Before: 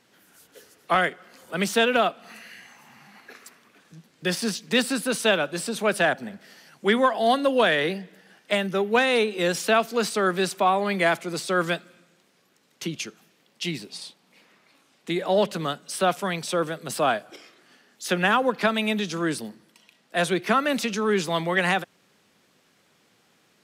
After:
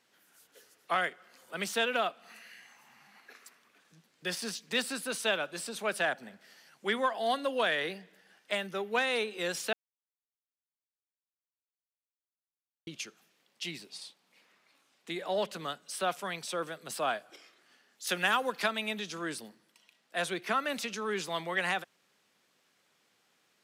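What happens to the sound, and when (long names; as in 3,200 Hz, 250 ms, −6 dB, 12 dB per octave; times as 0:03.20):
0:09.73–0:12.87: silence
0:18.07–0:18.68: high-shelf EQ 3,800 Hz +10 dB
whole clip: low-shelf EQ 390 Hz −9.5 dB; level −7 dB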